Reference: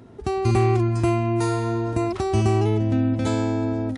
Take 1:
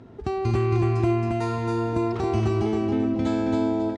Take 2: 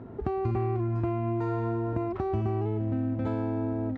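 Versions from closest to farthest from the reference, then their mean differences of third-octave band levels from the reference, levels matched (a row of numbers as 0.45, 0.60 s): 1, 2; 3.5, 5.0 dB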